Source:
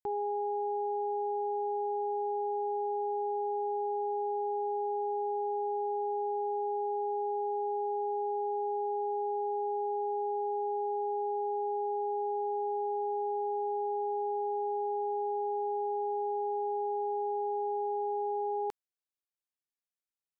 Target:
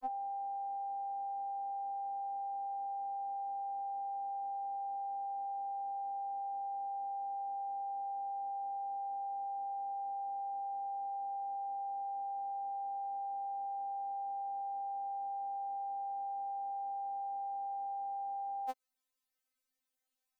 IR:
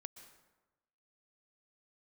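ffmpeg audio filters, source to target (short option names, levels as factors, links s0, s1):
-filter_complex "[0:a]aeval=exprs='val(0)*sin(2*PI*28*n/s)':c=same,acrossover=split=310|620[s0][s1][s2];[s0]acompressor=threshold=0.00158:ratio=4[s3];[s1]acompressor=threshold=0.00891:ratio=4[s4];[s2]acompressor=threshold=0.00562:ratio=4[s5];[s3][s4][s5]amix=inputs=3:normalize=0,afftfilt=real='re*3.46*eq(mod(b,12),0)':imag='im*3.46*eq(mod(b,12),0)':win_size=2048:overlap=0.75,volume=3.98"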